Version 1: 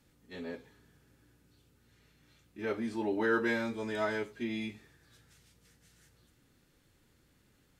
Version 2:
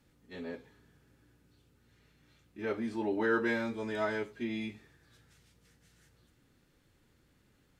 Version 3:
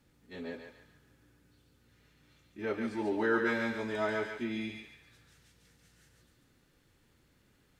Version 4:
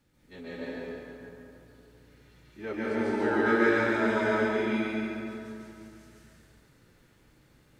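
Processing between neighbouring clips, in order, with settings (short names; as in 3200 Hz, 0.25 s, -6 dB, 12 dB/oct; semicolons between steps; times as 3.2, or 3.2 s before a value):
high shelf 4700 Hz -5 dB
thinning echo 0.141 s, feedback 42%, high-pass 930 Hz, level -3 dB
plate-style reverb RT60 3 s, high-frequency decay 0.5×, pre-delay 0.12 s, DRR -8 dB; gain -2 dB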